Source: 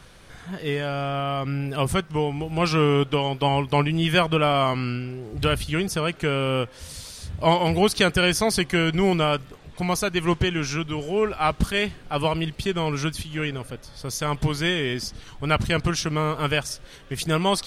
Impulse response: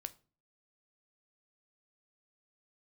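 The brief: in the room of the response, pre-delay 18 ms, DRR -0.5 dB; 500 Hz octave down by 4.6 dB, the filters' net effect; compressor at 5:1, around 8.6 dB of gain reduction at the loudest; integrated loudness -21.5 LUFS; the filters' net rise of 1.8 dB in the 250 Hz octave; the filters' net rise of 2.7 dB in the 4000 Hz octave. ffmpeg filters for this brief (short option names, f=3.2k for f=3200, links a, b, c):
-filter_complex "[0:a]equalizer=f=250:t=o:g=5.5,equalizer=f=500:t=o:g=-8,equalizer=f=4k:t=o:g=4,acompressor=threshold=-25dB:ratio=5,asplit=2[a][b];[1:a]atrim=start_sample=2205,adelay=18[c];[b][c]afir=irnorm=-1:irlink=0,volume=4dB[d];[a][d]amix=inputs=2:normalize=0,volume=5dB"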